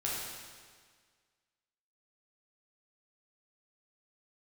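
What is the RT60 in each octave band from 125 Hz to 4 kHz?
1.7, 1.7, 1.7, 1.7, 1.7, 1.6 seconds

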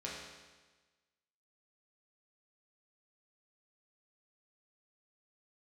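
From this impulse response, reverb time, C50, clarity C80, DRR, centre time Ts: 1.3 s, 0.5 dB, 3.0 dB, −5.5 dB, 76 ms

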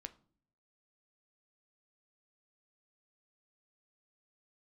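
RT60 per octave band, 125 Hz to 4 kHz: 0.90, 0.75, 0.55, 0.45, 0.30, 0.35 seconds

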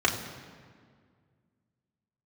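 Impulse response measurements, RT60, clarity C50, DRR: 1.9 s, 8.0 dB, −2.0 dB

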